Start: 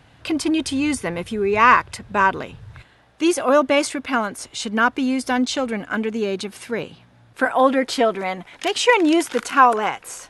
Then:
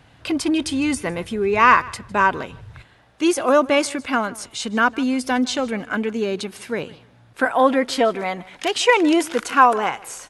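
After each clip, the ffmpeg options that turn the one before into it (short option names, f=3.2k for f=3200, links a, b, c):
-af "aecho=1:1:155|310:0.0794|0.0167"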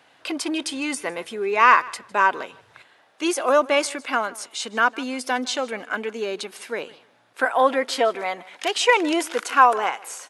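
-af "highpass=410,volume=-1dB"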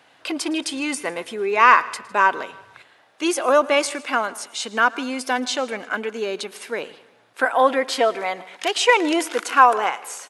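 -af "aecho=1:1:112|224|336|448:0.075|0.042|0.0235|0.0132,volume=1.5dB"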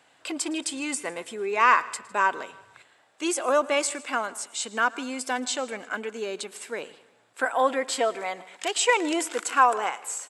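-af "equalizer=f=7.7k:t=o:w=0.24:g=13.5,volume=-6dB"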